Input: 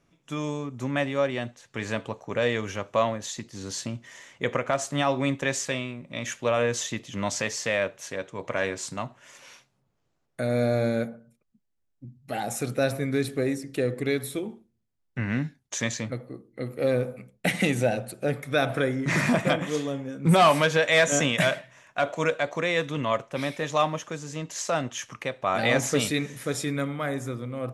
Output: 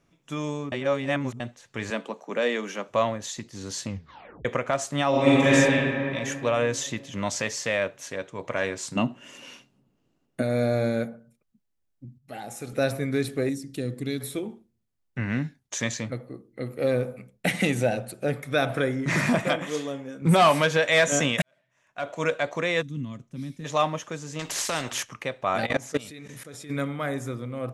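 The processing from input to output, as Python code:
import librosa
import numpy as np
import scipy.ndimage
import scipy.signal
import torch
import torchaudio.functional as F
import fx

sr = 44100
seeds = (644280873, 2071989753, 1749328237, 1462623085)

y = fx.steep_highpass(x, sr, hz=170.0, slope=72, at=(1.9, 2.89))
y = fx.reverb_throw(y, sr, start_s=5.09, length_s=0.44, rt60_s=2.8, drr_db=-9.0)
y = fx.small_body(y, sr, hz=(250.0, 2800.0), ring_ms=20, db=fx.line((8.95, 17.0), (10.41, 12.0)), at=(8.95, 10.41), fade=0.02)
y = fx.comb_fb(y, sr, f0_hz=83.0, decay_s=1.6, harmonics='all', damping=0.0, mix_pct=60, at=(12.18, 12.73))
y = fx.band_shelf(y, sr, hz=1000.0, db=-9.0, octaves=3.0, at=(13.49, 14.21))
y = fx.low_shelf(y, sr, hz=170.0, db=-10.5, at=(19.44, 20.22))
y = fx.curve_eq(y, sr, hz=(250.0, 590.0, 2600.0, 6000.0), db=(0, -26, -19, -10), at=(22.81, 23.64), fade=0.02)
y = fx.spectral_comp(y, sr, ratio=2.0, at=(24.39, 25.03))
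y = fx.level_steps(y, sr, step_db=21, at=(25.65, 26.69), fade=0.02)
y = fx.edit(y, sr, fx.reverse_span(start_s=0.72, length_s=0.68),
    fx.tape_stop(start_s=3.85, length_s=0.6),
    fx.fade_in_span(start_s=21.42, length_s=0.88, curve='qua'), tone=tone)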